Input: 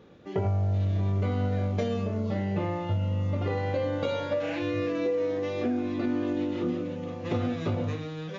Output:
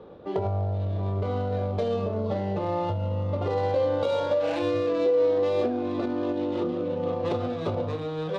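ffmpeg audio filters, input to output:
-filter_complex "[0:a]acrossover=split=210[a][b];[b]adynamicsmooth=sensitivity=6:basefreq=1.9k[c];[a][c]amix=inputs=2:normalize=0,alimiter=level_in=1.5dB:limit=-24dB:level=0:latency=1:release=435,volume=-1.5dB,equalizer=f=125:t=o:w=1:g=-4,equalizer=f=250:t=o:w=1:g=-4,equalizer=f=500:t=o:w=1:g=5,equalizer=f=1k:t=o:w=1:g=5,equalizer=f=2k:t=o:w=1:g=-7,equalizer=f=4k:t=o:w=1:g=8,volume=6.5dB"

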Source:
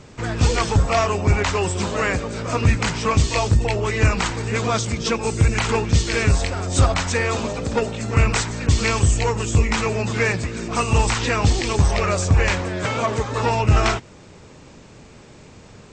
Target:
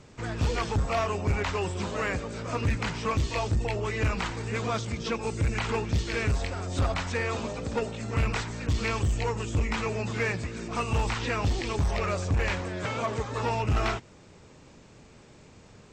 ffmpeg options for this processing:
-filter_complex "[0:a]asoftclip=type=hard:threshold=-12.5dB,acrossover=split=4700[a][b];[b]acompressor=threshold=-39dB:ratio=4:attack=1:release=60[c];[a][c]amix=inputs=2:normalize=0,volume=-8dB"

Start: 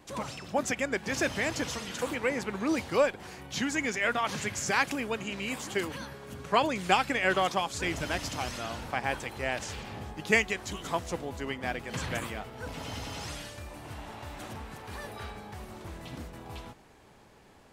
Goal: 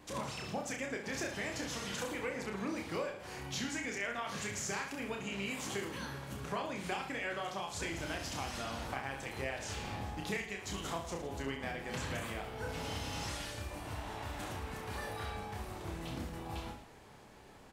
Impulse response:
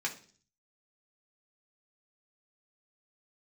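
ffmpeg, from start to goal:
-filter_complex "[0:a]acompressor=threshold=-36dB:ratio=6,asplit=2[a][b];[b]aecho=0:1:30|66|109.2|161|223.2:0.631|0.398|0.251|0.158|0.1[c];[a][c]amix=inputs=2:normalize=0,volume=-1.5dB"

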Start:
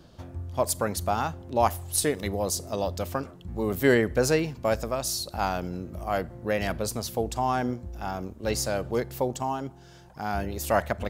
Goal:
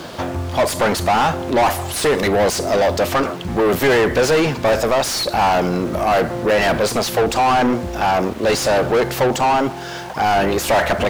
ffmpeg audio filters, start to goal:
-filter_complex "[0:a]acrusher=bits=9:mix=0:aa=0.000001,asplit=2[a][b];[b]highpass=f=720:p=1,volume=35dB,asoftclip=type=tanh:threshold=-7dB[c];[a][c]amix=inputs=2:normalize=0,lowpass=f=2.3k:p=1,volume=-6dB"

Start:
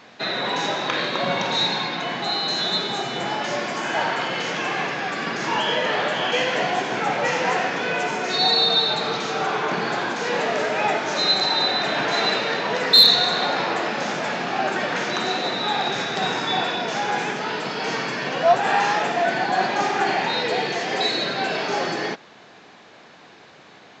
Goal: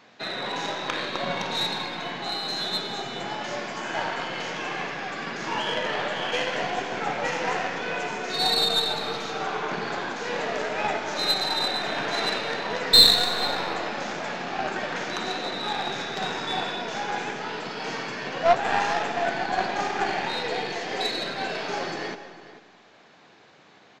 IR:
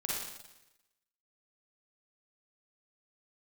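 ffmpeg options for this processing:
-filter_complex "[0:a]aeval=exprs='0.631*(cos(1*acos(clip(val(0)/0.631,-1,1)))-cos(1*PI/2))+0.0891*(cos(2*acos(clip(val(0)/0.631,-1,1)))-cos(2*PI/2))+0.0631*(cos(3*acos(clip(val(0)/0.631,-1,1)))-cos(3*PI/2))+0.0178*(cos(7*acos(clip(val(0)/0.631,-1,1)))-cos(7*PI/2))':c=same,asplit=2[a][b];[b]adelay=443.1,volume=-14dB,highshelf=f=4k:g=-9.97[c];[a][c]amix=inputs=2:normalize=0,asplit=2[d][e];[1:a]atrim=start_sample=2205,adelay=112[f];[e][f]afir=irnorm=-1:irlink=0,volume=-18.5dB[g];[d][g]amix=inputs=2:normalize=0,volume=-1dB"

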